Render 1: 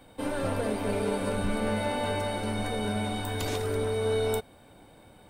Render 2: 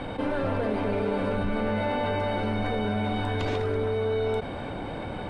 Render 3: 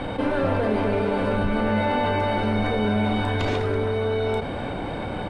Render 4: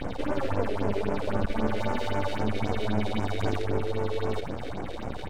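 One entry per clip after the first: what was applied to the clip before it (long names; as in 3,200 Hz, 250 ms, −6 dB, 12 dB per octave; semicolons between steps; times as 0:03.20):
low-pass filter 2,900 Hz 12 dB per octave; envelope flattener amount 70%
double-tracking delay 33 ms −11 dB; level +4.5 dB
half-wave rectification; all-pass phaser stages 4, 3.8 Hz, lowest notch 150–4,000 Hz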